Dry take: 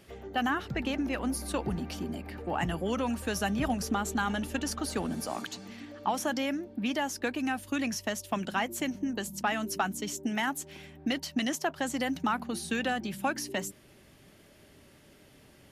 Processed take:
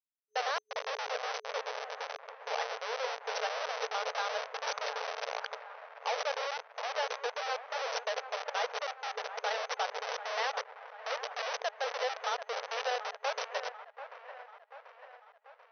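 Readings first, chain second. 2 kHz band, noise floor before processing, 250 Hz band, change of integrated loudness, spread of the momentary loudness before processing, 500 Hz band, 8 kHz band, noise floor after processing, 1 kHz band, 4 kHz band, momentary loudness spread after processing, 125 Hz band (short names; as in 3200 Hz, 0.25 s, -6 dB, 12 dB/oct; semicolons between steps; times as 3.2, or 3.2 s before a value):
-2.5 dB, -58 dBFS, under -40 dB, -3.5 dB, 6 LU, -0.5 dB, -8.5 dB, -62 dBFS, -1.0 dB, 0.0 dB, 12 LU, under -40 dB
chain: Schmitt trigger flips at -30.5 dBFS; FFT band-pass 430–6200 Hz; band-limited delay 0.738 s, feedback 55%, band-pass 1100 Hz, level -11 dB; gain +4 dB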